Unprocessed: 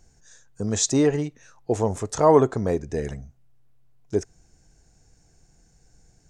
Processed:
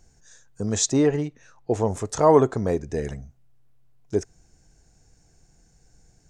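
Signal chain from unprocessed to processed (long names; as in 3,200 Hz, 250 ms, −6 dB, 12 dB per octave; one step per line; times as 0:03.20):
0:00.85–0:01.87: high-shelf EQ 4,800 Hz → 8,000 Hz −8.5 dB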